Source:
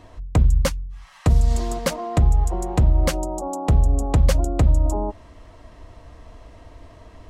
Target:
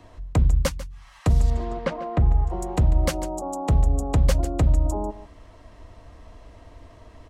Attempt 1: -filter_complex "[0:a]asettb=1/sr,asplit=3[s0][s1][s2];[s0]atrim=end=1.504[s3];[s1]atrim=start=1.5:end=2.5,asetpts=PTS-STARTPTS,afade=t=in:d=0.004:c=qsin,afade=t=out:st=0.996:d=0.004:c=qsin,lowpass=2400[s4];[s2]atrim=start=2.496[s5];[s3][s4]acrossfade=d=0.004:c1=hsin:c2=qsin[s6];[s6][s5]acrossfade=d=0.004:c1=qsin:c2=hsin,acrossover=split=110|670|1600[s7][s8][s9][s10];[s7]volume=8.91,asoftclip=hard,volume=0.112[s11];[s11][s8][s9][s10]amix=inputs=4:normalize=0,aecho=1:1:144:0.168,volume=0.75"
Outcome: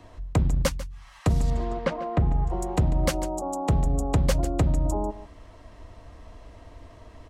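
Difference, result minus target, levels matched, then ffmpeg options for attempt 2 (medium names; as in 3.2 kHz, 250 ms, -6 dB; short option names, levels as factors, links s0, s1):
overload inside the chain: distortion +20 dB
-filter_complex "[0:a]asettb=1/sr,asplit=3[s0][s1][s2];[s0]atrim=end=1.504[s3];[s1]atrim=start=1.5:end=2.5,asetpts=PTS-STARTPTS,afade=t=in:d=0.004:c=qsin,afade=t=out:st=0.996:d=0.004:c=qsin,lowpass=2400[s4];[s2]atrim=start=2.496[s5];[s3][s4]acrossfade=d=0.004:c1=hsin:c2=qsin[s6];[s6][s5]acrossfade=d=0.004:c1=qsin:c2=hsin,acrossover=split=110|670|1600[s7][s8][s9][s10];[s7]volume=3.35,asoftclip=hard,volume=0.299[s11];[s11][s8][s9][s10]amix=inputs=4:normalize=0,aecho=1:1:144:0.168,volume=0.75"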